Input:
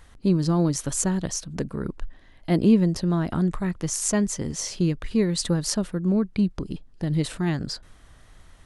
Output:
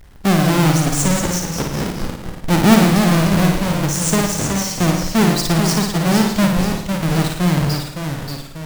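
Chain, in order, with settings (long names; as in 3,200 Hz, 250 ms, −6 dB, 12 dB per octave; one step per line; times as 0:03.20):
each half-wave held at its own peak
delay with pitch and tempo change per echo 124 ms, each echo −1 semitone, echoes 3, each echo −6 dB
flutter between parallel walls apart 9.5 metres, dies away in 0.67 s
level +1.5 dB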